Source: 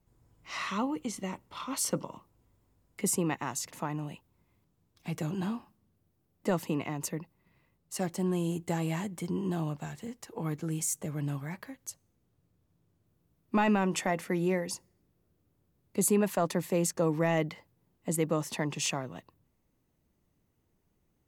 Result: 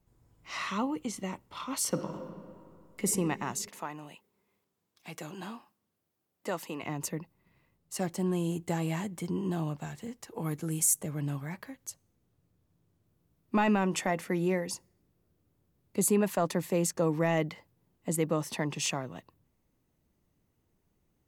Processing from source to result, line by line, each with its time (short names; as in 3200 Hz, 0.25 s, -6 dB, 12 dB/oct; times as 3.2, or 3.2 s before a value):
1.88–3.07 reverb throw, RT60 2.3 s, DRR 4.5 dB
3.69–6.83 HPF 660 Hz 6 dB/oct
10.34–11.03 bell 11000 Hz +10.5 dB 0.88 oct
18.22–18.83 notch 7000 Hz